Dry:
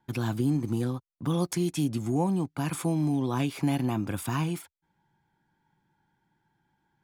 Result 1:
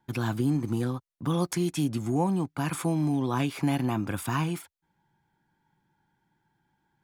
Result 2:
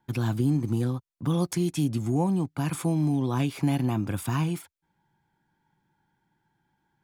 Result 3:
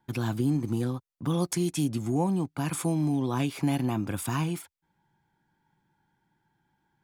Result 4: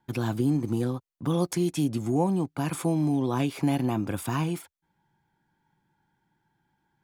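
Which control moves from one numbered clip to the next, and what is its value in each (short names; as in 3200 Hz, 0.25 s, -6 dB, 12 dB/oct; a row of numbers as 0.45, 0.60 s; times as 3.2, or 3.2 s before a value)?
dynamic EQ, frequency: 1400, 110, 8500, 500 Hz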